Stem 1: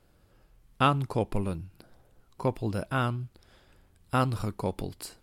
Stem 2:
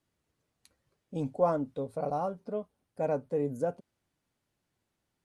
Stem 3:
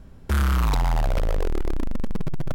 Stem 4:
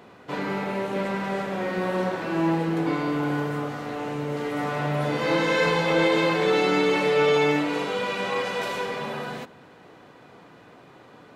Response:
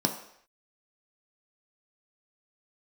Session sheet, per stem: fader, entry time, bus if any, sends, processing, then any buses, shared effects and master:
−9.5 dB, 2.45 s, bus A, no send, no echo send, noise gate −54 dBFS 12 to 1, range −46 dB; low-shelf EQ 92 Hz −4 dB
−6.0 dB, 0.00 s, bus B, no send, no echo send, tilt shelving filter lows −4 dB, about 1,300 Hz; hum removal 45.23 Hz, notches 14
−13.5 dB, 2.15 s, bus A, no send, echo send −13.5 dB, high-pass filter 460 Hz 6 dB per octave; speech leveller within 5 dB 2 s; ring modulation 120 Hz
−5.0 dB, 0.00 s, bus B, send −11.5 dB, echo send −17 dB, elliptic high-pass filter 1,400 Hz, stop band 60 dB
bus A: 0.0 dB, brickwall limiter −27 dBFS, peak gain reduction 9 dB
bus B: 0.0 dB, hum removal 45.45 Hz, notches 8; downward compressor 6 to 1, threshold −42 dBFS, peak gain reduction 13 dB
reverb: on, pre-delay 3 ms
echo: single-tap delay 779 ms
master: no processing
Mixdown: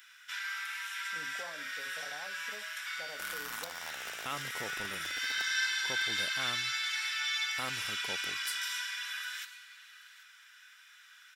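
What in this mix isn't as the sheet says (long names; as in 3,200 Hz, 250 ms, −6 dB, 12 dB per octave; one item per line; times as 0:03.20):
stem 1: entry 2.45 s → 3.45 s
stem 3: entry 2.15 s → 2.90 s
master: extra spectral tilt +3.5 dB per octave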